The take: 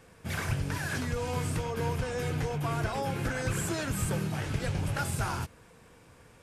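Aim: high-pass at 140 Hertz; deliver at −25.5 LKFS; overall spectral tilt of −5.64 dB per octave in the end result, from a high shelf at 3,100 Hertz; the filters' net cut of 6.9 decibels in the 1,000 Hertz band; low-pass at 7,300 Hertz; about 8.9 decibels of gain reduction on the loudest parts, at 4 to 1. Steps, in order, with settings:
high-pass filter 140 Hz
low-pass filter 7,300 Hz
parametric band 1,000 Hz −8.5 dB
high-shelf EQ 3,100 Hz −6.5 dB
downward compressor 4 to 1, threshold −41 dBFS
level +18 dB

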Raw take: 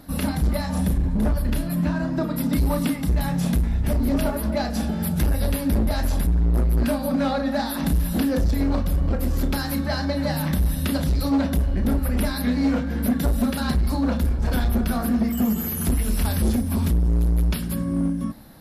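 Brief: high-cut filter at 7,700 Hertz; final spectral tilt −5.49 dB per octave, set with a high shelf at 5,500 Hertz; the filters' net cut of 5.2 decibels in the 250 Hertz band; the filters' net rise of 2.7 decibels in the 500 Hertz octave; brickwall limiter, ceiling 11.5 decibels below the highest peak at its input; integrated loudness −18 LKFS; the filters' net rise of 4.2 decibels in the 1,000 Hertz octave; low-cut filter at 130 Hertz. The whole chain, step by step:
high-pass filter 130 Hz
low-pass filter 7,700 Hz
parametric band 250 Hz −6.5 dB
parametric band 500 Hz +3 dB
parametric band 1,000 Hz +5 dB
high-shelf EQ 5,500 Hz −4 dB
level +13.5 dB
brickwall limiter −9 dBFS

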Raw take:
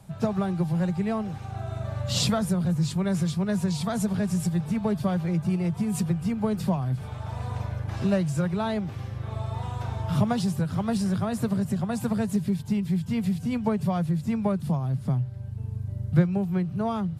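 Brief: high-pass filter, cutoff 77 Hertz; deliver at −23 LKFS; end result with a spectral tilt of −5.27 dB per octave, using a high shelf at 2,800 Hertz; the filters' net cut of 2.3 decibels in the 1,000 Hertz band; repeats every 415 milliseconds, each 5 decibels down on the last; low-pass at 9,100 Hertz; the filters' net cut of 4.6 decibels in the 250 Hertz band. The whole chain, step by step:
high-pass filter 77 Hz
low-pass filter 9,100 Hz
parametric band 250 Hz −7 dB
parametric band 1,000 Hz −3.5 dB
high-shelf EQ 2,800 Hz +6 dB
repeating echo 415 ms, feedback 56%, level −5 dB
level +5.5 dB

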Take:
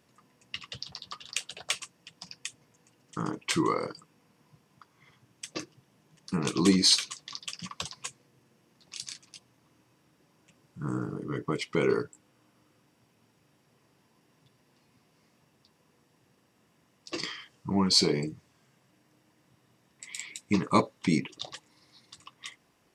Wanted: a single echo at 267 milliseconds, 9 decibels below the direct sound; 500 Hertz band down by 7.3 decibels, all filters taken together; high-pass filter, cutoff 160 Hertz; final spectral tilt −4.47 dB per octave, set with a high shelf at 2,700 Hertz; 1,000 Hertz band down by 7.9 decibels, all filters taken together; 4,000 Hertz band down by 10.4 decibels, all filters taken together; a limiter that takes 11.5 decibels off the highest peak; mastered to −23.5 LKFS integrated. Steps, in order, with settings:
high-pass filter 160 Hz
parametric band 500 Hz −8.5 dB
parametric band 1,000 Hz −6 dB
high-shelf EQ 2,700 Hz −6.5 dB
parametric band 4,000 Hz −6.5 dB
brickwall limiter −26 dBFS
single-tap delay 267 ms −9 dB
level +17 dB

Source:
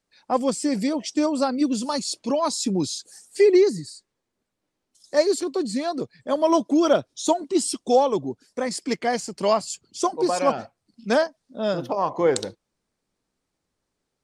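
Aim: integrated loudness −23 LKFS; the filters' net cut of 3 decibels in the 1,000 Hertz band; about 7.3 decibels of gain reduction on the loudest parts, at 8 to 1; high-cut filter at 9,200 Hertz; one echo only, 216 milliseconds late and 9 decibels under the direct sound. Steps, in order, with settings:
low-pass filter 9,200 Hz
parametric band 1,000 Hz −4 dB
downward compressor 8 to 1, threshold −20 dBFS
single-tap delay 216 ms −9 dB
level +4 dB

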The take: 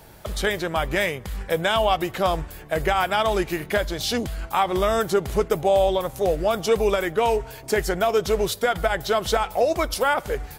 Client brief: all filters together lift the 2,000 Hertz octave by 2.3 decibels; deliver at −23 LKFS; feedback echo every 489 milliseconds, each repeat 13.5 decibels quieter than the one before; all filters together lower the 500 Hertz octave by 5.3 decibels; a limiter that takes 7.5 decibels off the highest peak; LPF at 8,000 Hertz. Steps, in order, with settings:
low-pass filter 8,000 Hz
parametric band 500 Hz −7 dB
parametric band 2,000 Hz +3.5 dB
brickwall limiter −15.5 dBFS
repeating echo 489 ms, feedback 21%, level −13.5 dB
level +4 dB

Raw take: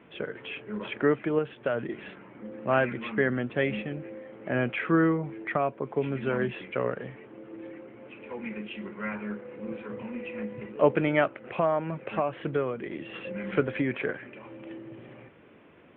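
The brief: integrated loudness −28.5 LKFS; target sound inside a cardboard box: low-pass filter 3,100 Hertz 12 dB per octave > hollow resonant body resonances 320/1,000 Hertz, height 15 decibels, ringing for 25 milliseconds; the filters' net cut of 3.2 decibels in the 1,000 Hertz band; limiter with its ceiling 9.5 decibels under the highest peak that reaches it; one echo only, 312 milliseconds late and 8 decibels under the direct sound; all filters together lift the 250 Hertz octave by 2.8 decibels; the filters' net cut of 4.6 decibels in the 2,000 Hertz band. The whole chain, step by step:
parametric band 250 Hz +4 dB
parametric band 1,000 Hz −3.5 dB
parametric band 2,000 Hz −4 dB
brickwall limiter −18.5 dBFS
low-pass filter 3,100 Hz 12 dB per octave
single-tap delay 312 ms −8 dB
hollow resonant body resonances 320/1,000 Hz, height 15 dB, ringing for 25 ms
level −7 dB

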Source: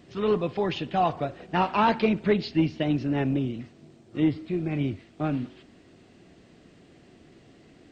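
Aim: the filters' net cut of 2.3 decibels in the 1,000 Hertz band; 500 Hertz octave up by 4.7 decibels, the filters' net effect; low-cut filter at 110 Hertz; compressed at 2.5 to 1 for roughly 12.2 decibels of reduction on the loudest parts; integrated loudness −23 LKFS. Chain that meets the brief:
high-pass filter 110 Hz
parametric band 500 Hz +7.5 dB
parametric band 1,000 Hz −6.5 dB
downward compressor 2.5 to 1, threshold −33 dBFS
level +11 dB

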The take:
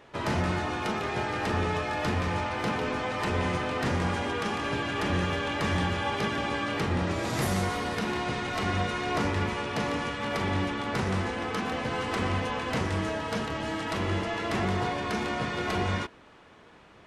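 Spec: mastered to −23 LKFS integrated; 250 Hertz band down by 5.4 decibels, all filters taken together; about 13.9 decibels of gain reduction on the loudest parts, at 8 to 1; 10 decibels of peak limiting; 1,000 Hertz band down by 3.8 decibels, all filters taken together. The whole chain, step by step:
parametric band 250 Hz −7.5 dB
parametric band 1,000 Hz −4.5 dB
downward compressor 8 to 1, threshold −41 dBFS
level +24.5 dB
brickwall limiter −14.5 dBFS

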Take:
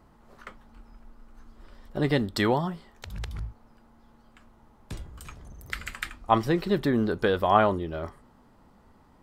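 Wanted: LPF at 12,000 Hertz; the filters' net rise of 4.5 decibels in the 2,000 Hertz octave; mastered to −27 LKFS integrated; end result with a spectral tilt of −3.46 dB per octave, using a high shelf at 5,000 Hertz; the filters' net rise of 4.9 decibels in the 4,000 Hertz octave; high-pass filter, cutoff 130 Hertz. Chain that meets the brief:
high-pass filter 130 Hz
low-pass filter 12,000 Hz
parametric band 2,000 Hz +5 dB
parametric band 4,000 Hz +7 dB
high-shelf EQ 5,000 Hz −6.5 dB
level −1.5 dB

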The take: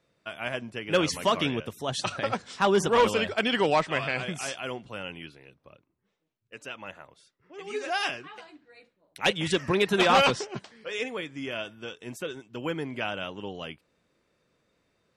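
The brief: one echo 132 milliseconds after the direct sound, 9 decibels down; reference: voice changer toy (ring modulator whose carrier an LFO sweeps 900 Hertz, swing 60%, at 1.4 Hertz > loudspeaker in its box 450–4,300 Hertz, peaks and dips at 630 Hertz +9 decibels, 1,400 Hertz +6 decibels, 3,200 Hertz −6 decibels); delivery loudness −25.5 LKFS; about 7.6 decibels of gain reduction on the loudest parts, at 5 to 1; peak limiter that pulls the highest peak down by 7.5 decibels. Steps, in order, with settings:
downward compressor 5 to 1, threshold −26 dBFS
brickwall limiter −23 dBFS
single-tap delay 132 ms −9 dB
ring modulator whose carrier an LFO sweeps 900 Hz, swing 60%, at 1.4 Hz
loudspeaker in its box 450–4,300 Hz, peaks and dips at 630 Hz +9 dB, 1,400 Hz +6 dB, 3,200 Hz −6 dB
level +10 dB

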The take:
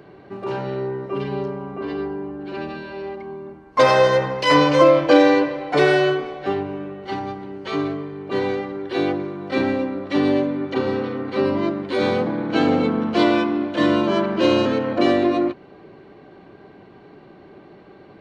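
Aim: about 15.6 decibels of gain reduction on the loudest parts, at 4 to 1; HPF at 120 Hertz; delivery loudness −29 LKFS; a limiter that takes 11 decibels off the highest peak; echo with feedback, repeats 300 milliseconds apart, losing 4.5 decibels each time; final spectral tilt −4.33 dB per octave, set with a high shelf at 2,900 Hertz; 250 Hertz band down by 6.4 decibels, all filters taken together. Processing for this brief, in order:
high-pass filter 120 Hz
parametric band 250 Hz −8.5 dB
high-shelf EQ 2,900 Hz −5 dB
downward compressor 4 to 1, threshold −30 dBFS
brickwall limiter −28.5 dBFS
repeating echo 300 ms, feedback 60%, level −4.5 dB
level +6.5 dB

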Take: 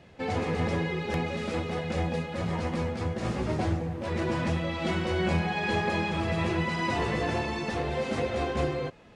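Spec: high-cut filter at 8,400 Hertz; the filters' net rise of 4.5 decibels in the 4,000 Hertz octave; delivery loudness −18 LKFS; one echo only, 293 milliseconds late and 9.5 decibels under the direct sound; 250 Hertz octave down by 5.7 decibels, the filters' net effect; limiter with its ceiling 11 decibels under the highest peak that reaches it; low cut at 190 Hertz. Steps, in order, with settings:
high-pass filter 190 Hz
low-pass filter 8,400 Hz
parametric band 250 Hz −6 dB
parametric band 4,000 Hz +6 dB
brickwall limiter −28 dBFS
single-tap delay 293 ms −9.5 dB
level +17.5 dB

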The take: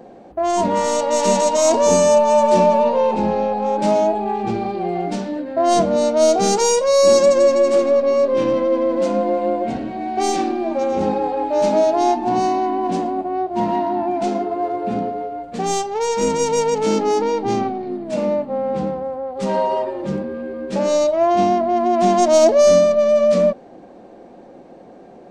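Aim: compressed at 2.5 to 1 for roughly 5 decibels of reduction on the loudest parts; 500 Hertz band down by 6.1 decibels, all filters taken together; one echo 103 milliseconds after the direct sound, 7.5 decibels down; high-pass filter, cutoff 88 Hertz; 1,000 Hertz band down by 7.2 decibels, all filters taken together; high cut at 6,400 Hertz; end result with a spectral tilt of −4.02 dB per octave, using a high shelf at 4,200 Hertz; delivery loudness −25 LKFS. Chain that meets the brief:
high-pass filter 88 Hz
low-pass filter 6,400 Hz
parametric band 500 Hz −5 dB
parametric band 1,000 Hz −8 dB
high-shelf EQ 4,200 Hz +6 dB
downward compressor 2.5 to 1, threshold −22 dBFS
single-tap delay 103 ms −7.5 dB

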